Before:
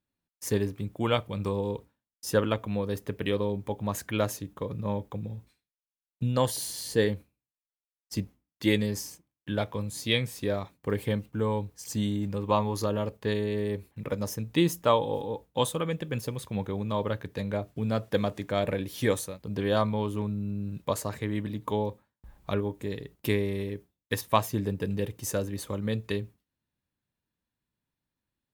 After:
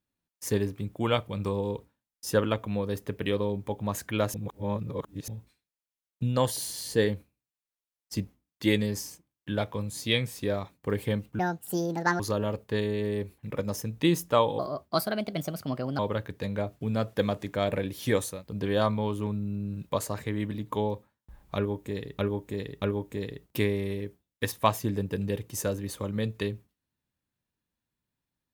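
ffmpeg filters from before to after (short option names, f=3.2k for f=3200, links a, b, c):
-filter_complex "[0:a]asplit=9[a][b][c][d][e][f][g][h][i];[a]atrim=end=4.342[j];[b]atrim=start=4.338:end=5.282,asetpts=PTS-STARTPTS,areverse[k];[c]atrim=start=5.278:end=11.394[l];[d]atrim=start=11.39:end=12.73,asetpts=PTS-STARTPTS,asetrate=73206,aresample=44100[m];[e]atrim=start=12.726:end=15.124[n];[f]atrim=start=15.12:end=16.94,asetpts=PTS-STARTPTS,asetrate=57330,aresample=44100[o];[g]atrim=start=16.936:end=23.142[p];[h]atrim=start=22.508:end=23.142[q];[i]atrim=start=22.508[r];[j][k]acrossfade=d=0.004:c1=hsin:c2=hsin[s];[s][l]acrossfade=d=0.004:c1=hsin:c2=hsin[t];[t][m]acrossfade=d=0.004:c1=hsin:c2=hsin[u];[u][n]acrossfade=d=0.004:c1=hsin:c2=hsin[v];[v][o]acrossfade=d=0.004:c1=hsin:c2=hsin[w];[w][p]acrossfade=d=0.004:c1=hsin:c2=hsin[x];[x][q]acrossfade=d=0.004:c1=hsin:c2=hsin[y];[y][r]acrossfade=d=0.004:c1=hsin:c2=hsin"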